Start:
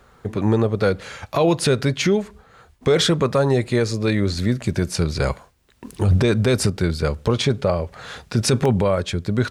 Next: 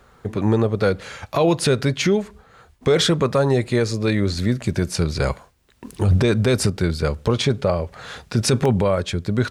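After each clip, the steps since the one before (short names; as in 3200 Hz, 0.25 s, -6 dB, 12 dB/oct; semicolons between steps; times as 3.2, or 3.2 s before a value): nothing audible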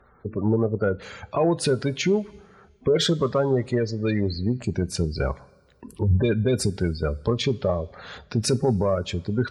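spectral gate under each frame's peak -20 dB strong; added harmonics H 3 -27 dB, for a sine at -8.5 dBFS; two-slope reverb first 0.22 s, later 1.8 s, from -18 dB, DRR 14.5 dB; gain -3 dB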